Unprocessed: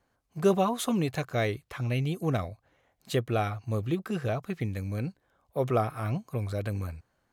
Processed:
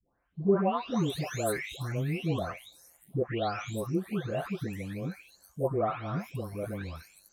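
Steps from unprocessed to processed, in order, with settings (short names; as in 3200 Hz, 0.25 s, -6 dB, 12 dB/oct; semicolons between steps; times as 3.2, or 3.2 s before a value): spectral delay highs late, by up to 0.675 s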